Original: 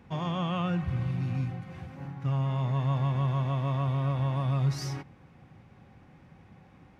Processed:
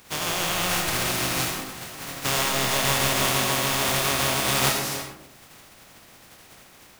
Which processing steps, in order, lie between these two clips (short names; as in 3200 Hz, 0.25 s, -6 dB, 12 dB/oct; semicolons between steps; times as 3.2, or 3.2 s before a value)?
spectral contrast lowered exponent 0.23; on a send: reverb RT60 0.80 s, pre-delay 40 ms, DRR 3 dB; on the sum: gain +3 dB